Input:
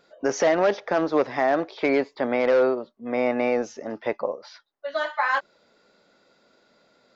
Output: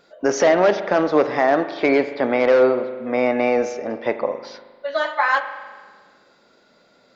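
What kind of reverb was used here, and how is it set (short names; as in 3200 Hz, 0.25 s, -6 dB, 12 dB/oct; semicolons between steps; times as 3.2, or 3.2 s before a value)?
spring tank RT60 1.5 s, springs 39 ms, chirp 30 ms, DRR 9.5 dB; gain +4.5 dB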